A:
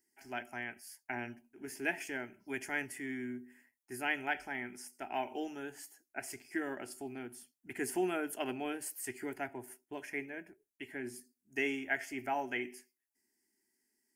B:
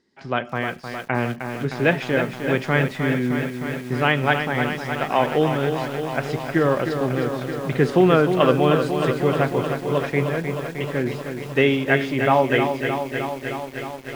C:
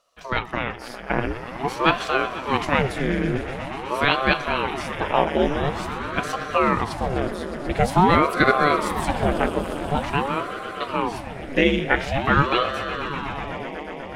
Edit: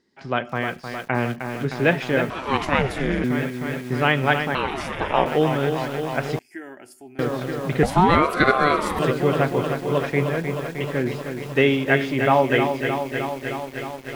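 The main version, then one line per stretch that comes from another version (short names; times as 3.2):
B
2.3–3.24 from C
4.55–5.26 from C
6.39–7.19 from A
7.83–8.99 from C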